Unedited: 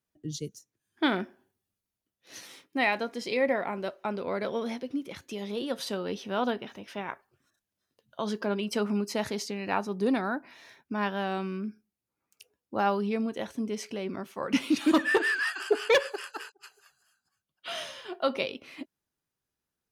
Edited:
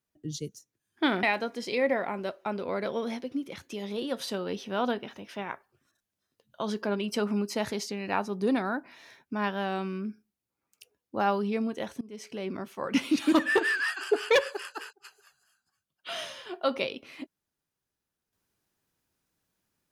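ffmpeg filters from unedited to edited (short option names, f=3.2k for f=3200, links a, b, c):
-filter_complex "[0:a]asplit=3[a][b][c];[a]atrim=end=1.232[d];[b]atrim=start=2.818:end=13.6,asetpts=PTS-STARTPTS,afade=t=out:st=10.778:d=0.004:c=hsin:silence=0.0668344[e];[c]atrim=start=13.6,asetpts=PTS-STARTPTS,afade=t=in:d=0.44:silence=0.0668344[f];[e][f]concat=n=2:v=0:a=1[g];[d][g]acrossfade=d=0.004:c1=hsin:c2=hsin"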